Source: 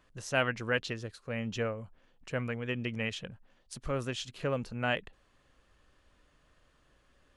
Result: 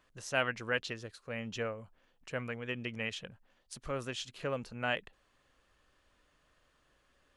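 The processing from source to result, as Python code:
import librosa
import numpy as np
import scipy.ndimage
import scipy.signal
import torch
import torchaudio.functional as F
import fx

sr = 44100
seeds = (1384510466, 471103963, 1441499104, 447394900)

y = fx.low_shelf(x, sr, hz=330.0, db=-6.0)
y = y * 10.0 ** (-1.5 / 20.0)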